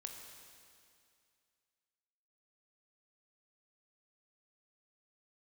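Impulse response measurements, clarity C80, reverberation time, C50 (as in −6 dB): 5.0 dB, 2.3 s, 4.0 dB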